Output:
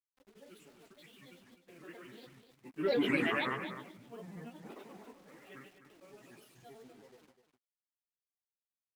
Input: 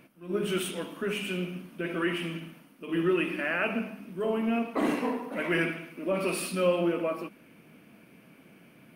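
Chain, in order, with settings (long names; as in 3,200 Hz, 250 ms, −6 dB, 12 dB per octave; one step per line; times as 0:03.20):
source passing by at 0:03.18, 16 m/s, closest 1.5 metres
mains-hum notches 60/120/180/240 Hz
bit reduction 11 bits
granular cloud, grains 21 per second, pitch spread up and down by 7 semitones
single-tap delay 252 ms −10.5 dB
level +3.5 dB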